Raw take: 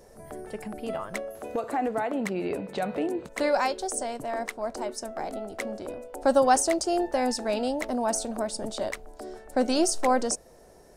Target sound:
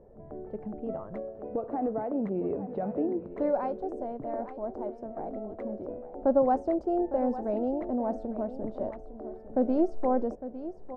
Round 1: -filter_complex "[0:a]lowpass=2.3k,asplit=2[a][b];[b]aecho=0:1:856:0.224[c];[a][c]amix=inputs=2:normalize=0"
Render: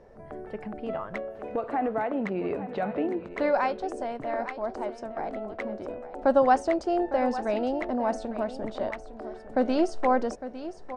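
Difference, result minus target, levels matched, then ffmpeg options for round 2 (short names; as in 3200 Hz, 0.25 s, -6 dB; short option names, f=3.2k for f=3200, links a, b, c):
2000 Hz band +14.5 dB
-filter_complex "[0:a]lowpass=600,asplit=2[a][b];[b]aecho=0:1:856:0.224[c];[a][c]amix=inputs=2:normalize=0"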